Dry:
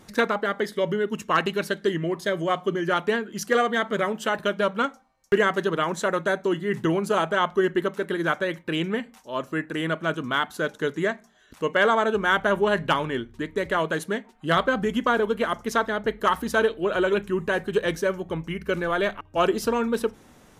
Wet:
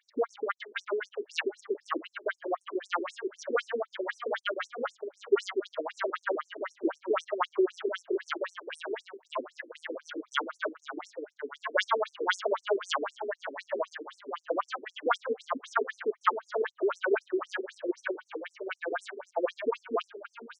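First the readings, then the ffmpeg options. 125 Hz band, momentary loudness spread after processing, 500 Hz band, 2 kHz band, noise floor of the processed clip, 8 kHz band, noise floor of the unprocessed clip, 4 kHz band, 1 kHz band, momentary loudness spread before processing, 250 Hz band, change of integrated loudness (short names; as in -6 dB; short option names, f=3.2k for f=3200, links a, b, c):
under -40 dB, 10 LU, -7.5 dB, -9.5 dB, -73 dBFS, -10.5 dB, -54 dBFS, -8.0 dB, -8.0 dB, 7 LU, -11.5 dB, -8.5 dB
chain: -filter_complex "[0:a]highshelf=f=3k:g=11.5,adynamicsmooth=sensitivity=0.5:basefreq=1.4k,lowshelf=f=190:g=-11,asplit=2[a][b];[b]aecho=0:1:572|1144|1716|2288:0.473|0.166|0.058|0.0203[c];[a][c]amix=inputs=2:normalize=0,afftfilt=real='re*between(b*sr/1024,320*pow(7900/320,0.5+0.5*sin(2*PI*3.9*pts/sr))/1.41,320*pow(7900/320,0.5+0.5*sin(2*PI*3.9*pts/sr))*1.41)':imag='im*between(b*sr/1024,320*pow(7900/320,0.5+0.5*sin(2*PI*3.9*pts/sr))/1.41,320*pow(7900/320,0.5+0.5*sin(2*PI*3.9*pts/sr))*1.41)':win_size=1024:overlap=0.75"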